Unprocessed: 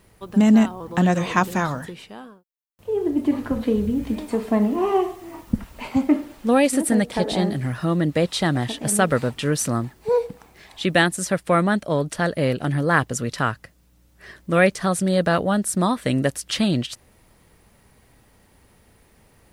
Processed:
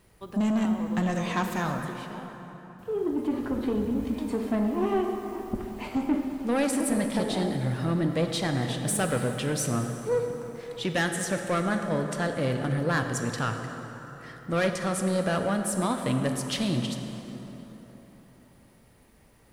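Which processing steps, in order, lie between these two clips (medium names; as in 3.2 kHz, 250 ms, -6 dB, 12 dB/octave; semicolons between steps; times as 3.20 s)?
saturation -15.5 dBFS, distortion -13 dB; plate-style reverb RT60 4.1 s, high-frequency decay 0.55×, DRR 4.5 dB; trim -5 dB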